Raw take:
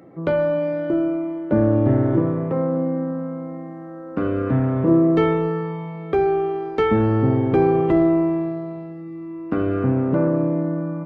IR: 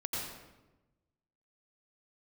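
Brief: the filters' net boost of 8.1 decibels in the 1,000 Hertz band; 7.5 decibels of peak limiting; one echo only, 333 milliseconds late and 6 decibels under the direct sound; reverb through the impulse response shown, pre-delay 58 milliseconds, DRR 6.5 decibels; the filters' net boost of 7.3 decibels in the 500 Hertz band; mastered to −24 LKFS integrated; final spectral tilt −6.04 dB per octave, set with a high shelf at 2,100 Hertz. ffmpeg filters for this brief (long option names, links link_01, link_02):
-filter_complex "[0:a]equalizer=frequency=500:width_type=o:gain=7.5,equalizer=frequency=1000:width_type=o:gain=6.5,highshelf=frequency=2100:gain=7.5,alimiter=limit=-9dB:level=0:latency=1,aecho=1:1:333:0.501,asplit=2[link_01][link_02];[1:a]atrim=start_sample=2205,adelay=58[link_03];[link_02][link_03]afir=irnorm=-1:irlink=0,volume=-10dB[link_04];[link_01][link_04]amix=inputs=2:normalize=0,volume=-9dB"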